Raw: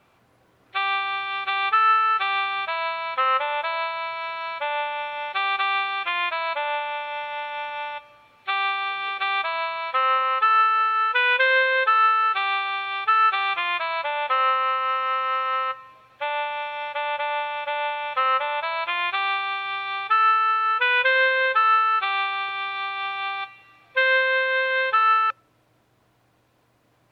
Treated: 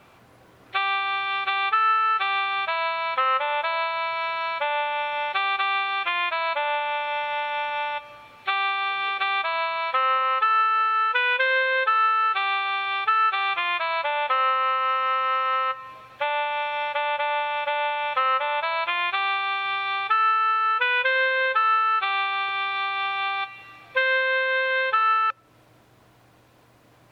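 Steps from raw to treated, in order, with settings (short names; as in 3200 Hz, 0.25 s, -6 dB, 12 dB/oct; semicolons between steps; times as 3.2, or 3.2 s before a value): compressor 2:1, threshold -34 dBFS, peak gain reduction 10.5 dB; gain +7.5 dB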